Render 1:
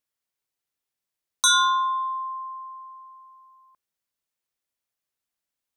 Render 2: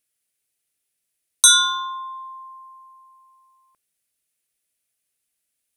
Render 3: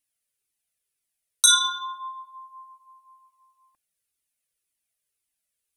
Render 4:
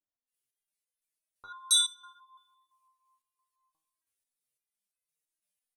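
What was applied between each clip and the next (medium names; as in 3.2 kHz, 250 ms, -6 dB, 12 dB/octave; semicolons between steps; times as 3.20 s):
fifteen-band graphic EQ 1 kHz -10 dB, 2.5 kHz +4 dB, 10 kHz +12 dB; trim +4 dB
Shepard-style flanger falling 1.9 Hz
bands offset in time lows, highs 270 ms, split 1.3 kHz; resonator arpeggio 5.9 Hz 100–510 Hz; trim +4.5 dB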